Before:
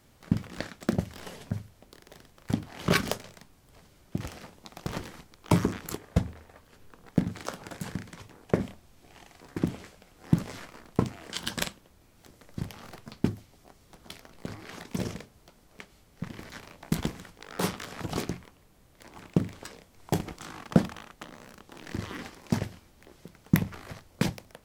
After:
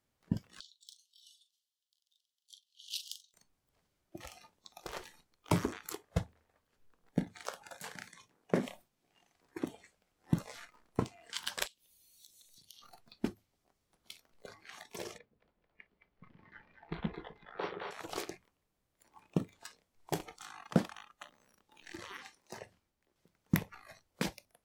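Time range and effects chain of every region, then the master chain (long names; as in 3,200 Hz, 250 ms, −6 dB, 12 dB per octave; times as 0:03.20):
0:00.60–0:03.34: Butterworth high-pass 3,000 Hz 72 dB per octave + high-shelf EQ 6,300 Hz −8 dB + double-tracking delay 41 ms −9.5 dB
0:07.76–0:09.33: low shelf with overshoot 110 Hz −7 dB, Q 1.5 + level that may fall only so fast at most 120 dB per second
0:11.66–0:12.82: high shelf with overshoot 2,200 Hz +13 dB, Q 1.5 + downward compressor 3 to 1, threshold −50 dBFS
0:15.18–0:17.91: high-frequency loss of the air 320 metres + echo with a time of its own for lows and highs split 460 Hz, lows 126 ms, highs 218 ms, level −3.5 dB
0:22.19–0:23.16: phase distortion by the signal itself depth 0.082 ms + downward compressor 2 to 1, threshold −35 dBFS + multiband upward and downward expander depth 40%
whole clip: noise reduction from a noise print of the clip's start 15 dB; low-shelf EQ 340 Hz −4 dB; level −4.5 dB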